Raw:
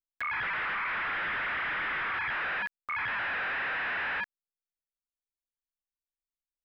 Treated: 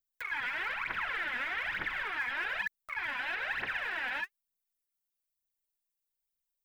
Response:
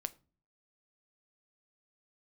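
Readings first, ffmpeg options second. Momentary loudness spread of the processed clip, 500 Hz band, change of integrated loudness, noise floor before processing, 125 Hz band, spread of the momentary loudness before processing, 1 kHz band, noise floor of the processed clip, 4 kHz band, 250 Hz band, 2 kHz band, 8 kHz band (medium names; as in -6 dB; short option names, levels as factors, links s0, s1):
3 LU, -3.5 dB, -3.0 dB, under -85 dBFS, -5.5 dB, 3 LU, -5.0 dB, under -85 dBFS, -0.5 dB, -3.5 dB, -3.0 dB, no reading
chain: -af "aemphasis=mode=production:type=50kf,bandreject=f=1200:w=8,aphaser=in_gain=1:out_gain=1:delay=4.2:decay=0.76:speed=1.1:type=triangular,volume=0.422"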